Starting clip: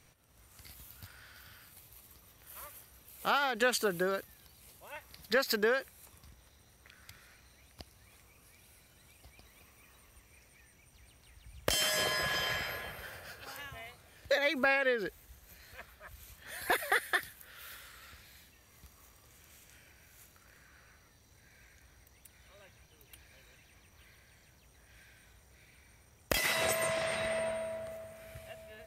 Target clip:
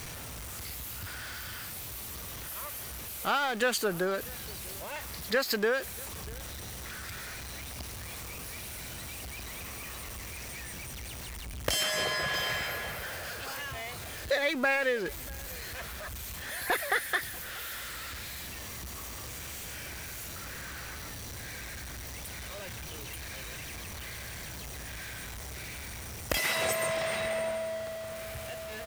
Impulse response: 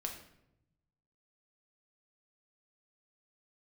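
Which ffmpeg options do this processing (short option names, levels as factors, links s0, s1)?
-filter_complex "[0:a]aeval=exprs='val(0)+0.5*0.0158*sgn(val(0))':c=same,asettb=1/sr,asplit=3[s0][s1][s2];[s0]atrim=end=11.834[s3];[s1]atrim=start=11.83:end=12.34,asetpts=PTS-STARTPTS,afade=t=in:d=0.004:c=qsin,afade=t=out:st=0.506:d=0.004:c=qsin,highshelf=f=10000:g=-8[s4];[s2]atrim=start=12.336[s5];[s3][s4]acrossfade=d=0.004:c1=hsin:c2=qsin[s6];[s6][s5]acrossfade=d=0.004:c1=qsin:c2=hsin,asplit=2[s7][s8];[s8]adelay=641.4,volume=0.0794,highshelf=f=4000:g=-14.4[s9];[s7][s9]amix=inputs=2:normalize=0"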